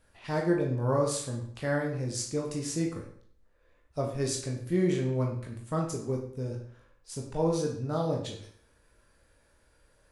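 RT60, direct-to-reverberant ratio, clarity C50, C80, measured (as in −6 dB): 0.60 s, −0.5 dB, 6.0 dB, 9.5 dB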